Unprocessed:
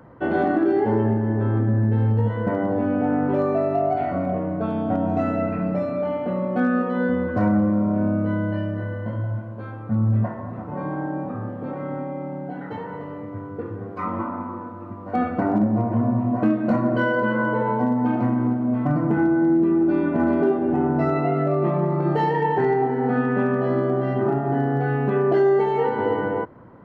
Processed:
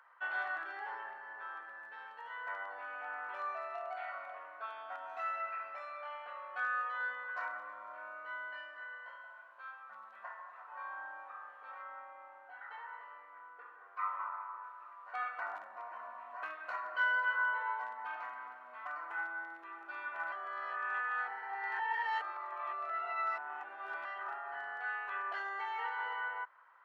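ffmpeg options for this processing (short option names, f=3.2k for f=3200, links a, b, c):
-filter_complex "[0:a]asettb=1/sr,asplit=3[a][b][c];[a]atrim=end=11.824[d];[b]atrim=start=11.82:end=14.64,asetpts=PTS-STARTPTS,afade=t=in:d=0.004:c=qsin,afade=t=out:st=2.816:d=0.004:c=qsin,aemphasis=mode=reproduction:type=75fm[e];[c]atrim=start=14.636[f];[d][e]acrossfade=d=0.004:c1=hsin:c2=qsin[g];[g][f]acrossfade=d=0.004:c1=qsin:c2=hsin,asplit=3[h][i][j];[h]atrim=end=20.322[k];[i]atrim=start=20.318:end=24.052,asetpts=PTS-STARTPTS,areverse[l];[j]atrim=start=24.048[m];[k][l]acrossfade=d=0.004:c1=hsin:c2=hsin[n];[n][m]acrossfade=d=0.004:c1=hsin:c2=hsin,highpass=f=1.2k:w=0.5412,highpass=f=1.2k:w=1.3066,highshelf=f=3.5k:g=-11,bandreject=f=2.1k:w=21,volume=-1.5dB"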